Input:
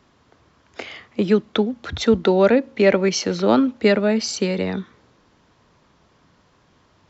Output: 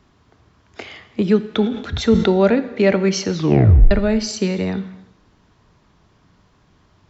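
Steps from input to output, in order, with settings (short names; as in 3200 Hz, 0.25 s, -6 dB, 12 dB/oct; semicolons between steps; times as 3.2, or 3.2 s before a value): 3.34 tape stop 0.57 s; low shelf 140 Hz +9.5 dB; notch 530 Hz, Q 12; non-linear reverb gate 0.37 s falling, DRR 11.5 dB; 1.52–2.3 sustainer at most 84 dB/s; gain -1 dB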